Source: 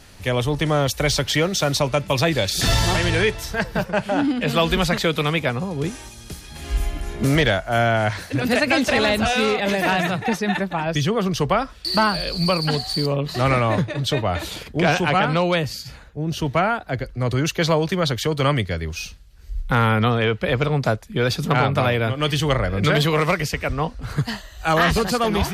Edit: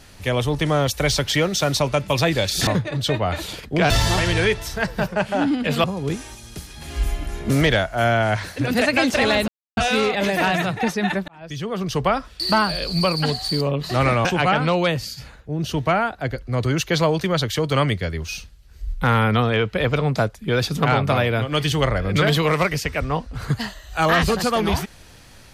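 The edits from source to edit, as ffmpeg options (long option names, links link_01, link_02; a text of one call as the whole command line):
ffmpeg -i in.wav -filter_complex "[0:a]asplit=7[link_01][link_02][link_03][link_04][link_05][link_06][link_07];[link_01]atrim=end=2.672[link_08];[link_02]atrim=start=13.698:end=14.932[link_09];[link_03]atrim=start=2.668:end=4.612[link_10];[link_04]atrim=start=5.578:end=9.22,asetpts=PTS-STARTPTS,afade=type=out:start_time=3.638:duration=0.004:curve=hsin,apad=pad_dur=0.29[link_11];[link_05]atrim=start=9.22:end=10.73,asetpts=PTS-STARTPTS,afade=type=in:duration=0.004:curve=hsin,afade=type=out:start_time=1.506:duration=0.004:curve=hsin[link_12];[link_06]atrim=start=10.73:end=13.702,asetpts=PTS-STARTPTS,afade=type=in:duration=0.82[link_13];[link_07]atrim=start=14.928[link_14];[link_08][link_09]acrossfade=duration=0.004:curve1=hsin:curve2=hsin[link_15];[link_15][link_10]acrossfade=duration=0.004:curve1=hsin:curve2=hsin[link_16];[link_11][link_12][link_13]concat=n=3:v=0:a=1[link_17];[link_16][link_17]acrossfade=duration=0.004:curve1=hsin:curve2=hsin[link_18];[link_18][link_14]acrossfade=duration=0.004:curve1=hsin:curve2=hsin" out.wav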